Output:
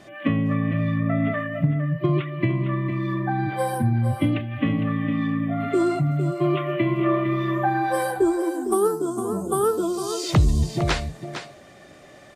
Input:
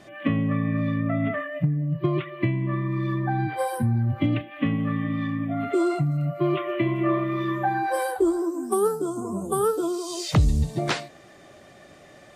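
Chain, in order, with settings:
single-tap delay 457 ms −9.5 dB
level +1.5 dB

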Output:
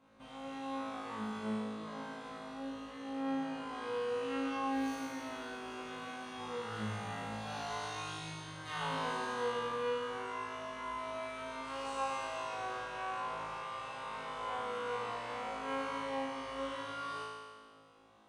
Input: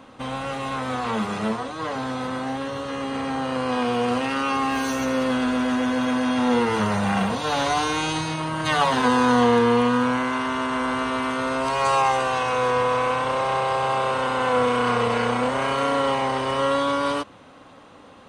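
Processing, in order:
tuned comb filter 54 Hz, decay 1.6 s, harmonics all, mix 100%
level −2 dB

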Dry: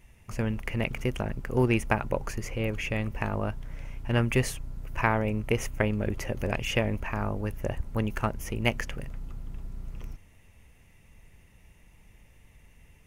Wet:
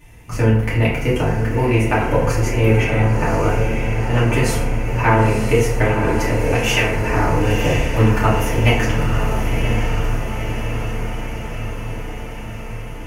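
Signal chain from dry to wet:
0:06.55–0:06.95: tilt shelving filter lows −9 dB
speech leveller within 4 dB 0.5 s
0:02.83–0:03.31: high-frequency loss of the air 250 metres
on a send: feedback delay with all-pass diffusion 992 ms, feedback 66%, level −6 dB
on the sum: feedback delay network reverb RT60 0.8 s, low-frequency decay 0.85×, high-frequency decay 0.55×, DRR −8.5 dB
level +1.5 dB

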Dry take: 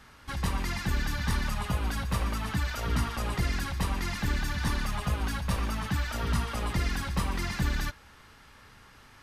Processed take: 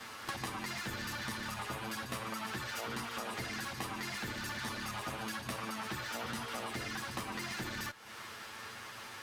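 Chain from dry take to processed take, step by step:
lower of the sound and its delayed copy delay 9 ms
high-pass filter 350 Hz 6 dB per octave
downward compressor 10 to 1, threshold −47 dBFS, peak gain reduction 17 dB
level +10 dB

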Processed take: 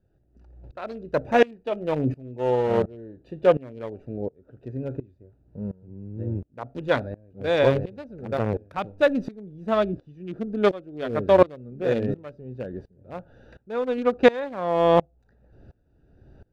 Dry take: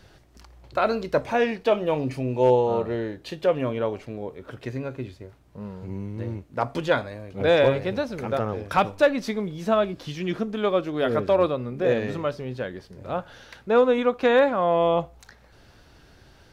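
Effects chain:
adaptive Wiener filter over 41 samples
tremolo with a ramp in dB swelling 1.4 Hz, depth 23 dB
level +7.5 dB

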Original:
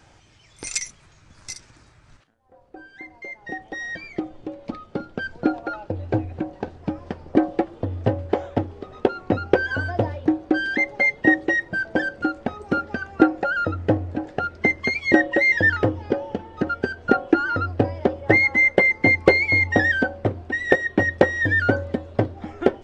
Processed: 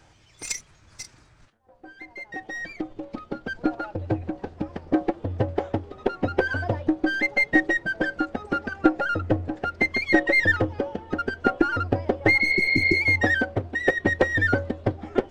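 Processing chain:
gain on one half-wave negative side −3 dB
healed spectral selection 0:18.53–0:19.35, 400–5,000 Hz after
phase-vocoder stretch with locked phases 0.67×

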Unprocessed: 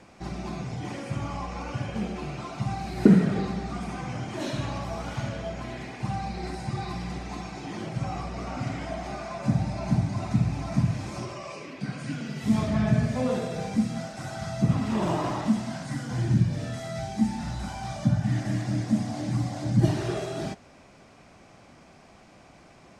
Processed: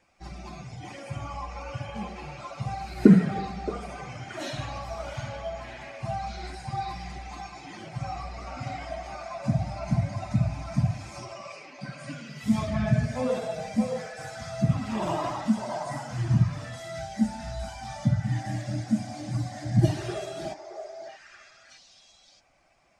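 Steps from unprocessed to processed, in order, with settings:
spectral dynamics exaggerated over time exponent 1.5
echo through a band-pass that steps 622 ms, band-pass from 690 Hz, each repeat 1.4 octaves, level −2 dB
level +2.5 dB

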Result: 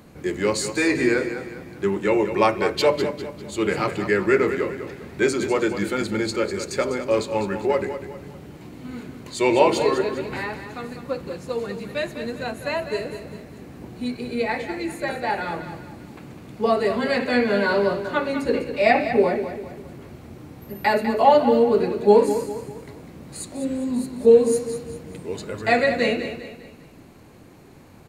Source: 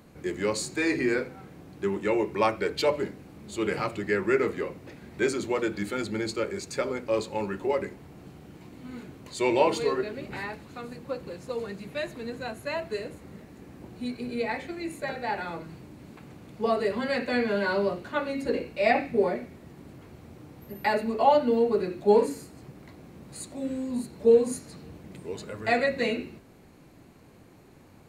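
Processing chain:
repeating echo 200 ms, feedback 41%, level −10 dB
level +5.5 dB

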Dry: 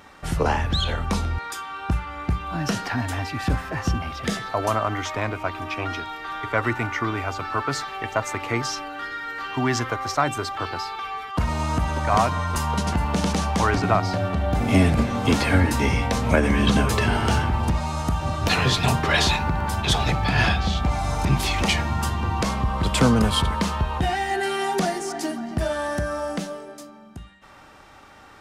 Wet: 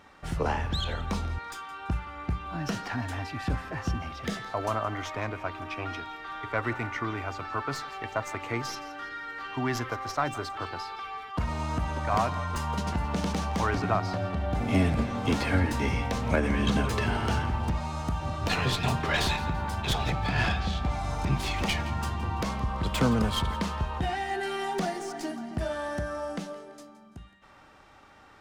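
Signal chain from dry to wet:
stylus tracing distortion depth 0.062 ms
high-shelf EQ 7,800 Hz −7 dB
feedback echo with a high-pass in the loop 168 ms, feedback 37%, level −16.5 dB
level −6.5 dB

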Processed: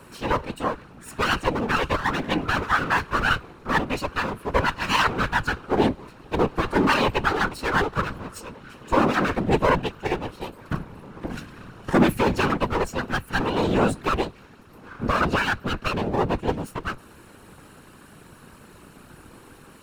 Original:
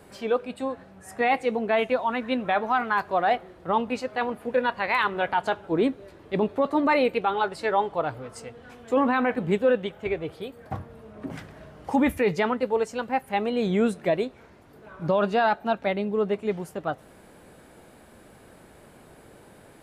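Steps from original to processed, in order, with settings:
lower of the sound and its delayed copy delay 0.73 ms
random phases in short frames
level +5 dB

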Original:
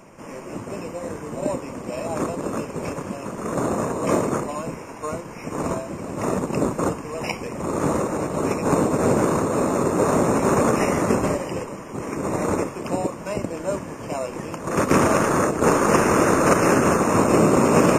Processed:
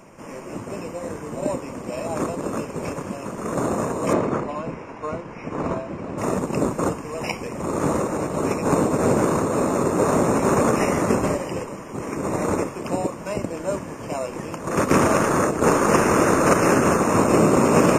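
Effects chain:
0:04.13–0:06.18: low-pass filter 3,700 Hz 12 dB per octave

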